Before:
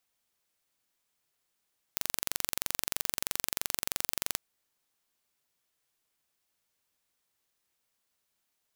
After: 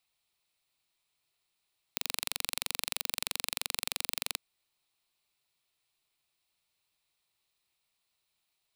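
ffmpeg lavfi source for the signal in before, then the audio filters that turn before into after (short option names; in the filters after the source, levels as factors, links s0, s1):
-f lavfi -i "aevalsrc='0.75*eq(mod(n,1909),0)':d=2.42:s=44100"
-af "equalizer=f=250:t=o:w=0.33:g=-12,equalizer=f=500:t=o:w=0.33:g=-7,equalizer=f=1600:t=o:w=0.33:g=-7,equalizer=f=2500:t=o:w=0.33:g=5,equalizer=f=4000:t=o:w=0.33:g=7,equalizer=f=6300:t=o:w=0.33:g=-6,equalizer=f=16000:t=o:w=0.33:g=-11"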